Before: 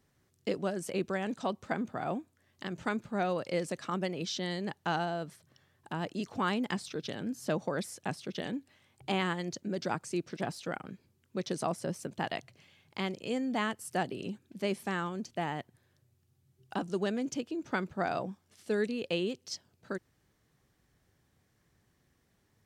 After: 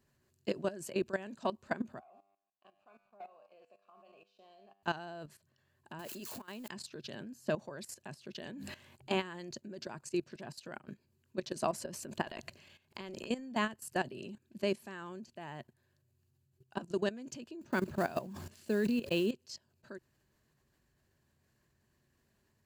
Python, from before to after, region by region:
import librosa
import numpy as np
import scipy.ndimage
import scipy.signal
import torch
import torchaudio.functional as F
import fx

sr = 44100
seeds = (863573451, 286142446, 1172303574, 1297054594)

y = fx.chain(x, sr, fx.vowel_filter(vowel='a'),
    fx.comb_fb(f0_hz=99.0, decay_s=0.75, harmonics='all', damping=0.0, mix_pct=80),
    fx.leveller(passes=1), at=(1.99, 4.83))
y = fx.chain(y, sr, fx.crossing_spikes(level_db=-35.0),
    fx.low_shelf(hz=140.0, db=-10.5),
    fx.over_compress(threshold_db=-37.0, ratio=-0.5), at=(5.99, 6.68))
y = fx.chain(y, sr, fx.hum_notches(base_hz=50, count=4),
    fx.sustainer(db_per_s=69.0), at=(8.48, 9.17))
y = fx.chain(y, sr, fx.peak_eq(hz=130.0, db=-12.0, octaves=0.26),
    fx.transient(attack_db=3, sustain_db=12), at=(11.56, 13.52))
y = fx.chain(y, sr, fx.block_float(bits=5),
    fx.peak_eq(hz=180.0, db=5.0, octaves=2.3),
    fx.sustainer(db_per_s=72.0), at=(17.61, 19.32))
y = fx.ripple_eq(y, sr, per_octave=1.4, db=6)
y = fx.level_steps(y, sr, step_db=15)